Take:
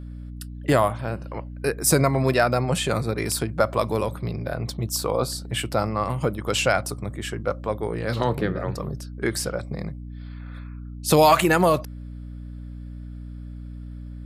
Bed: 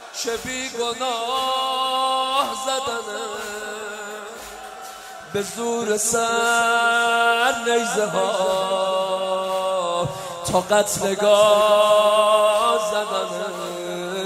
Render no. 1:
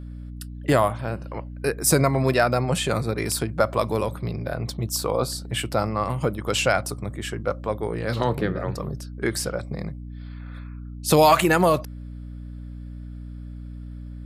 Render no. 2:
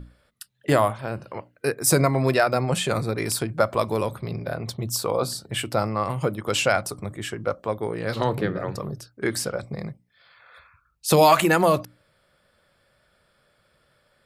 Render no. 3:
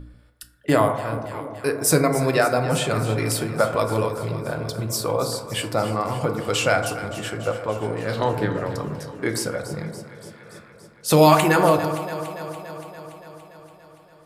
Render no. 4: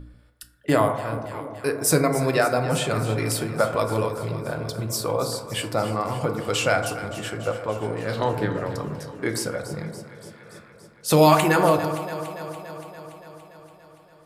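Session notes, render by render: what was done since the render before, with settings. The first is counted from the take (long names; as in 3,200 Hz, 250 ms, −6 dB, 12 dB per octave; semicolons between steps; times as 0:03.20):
no processing that can be heard
mains-hum notches 60/120/180/240/300 Hz
on a send: delay that swaps between a low-pass and a high-pass 143 ms, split 820 Hz, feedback 83%, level −11.5 dB; on the sum: feedback delay network reverb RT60 1.1 s, low-frequency decay 0.75×, high-frequency decay 0.3×, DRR 5.5 dB
level −1.5 dB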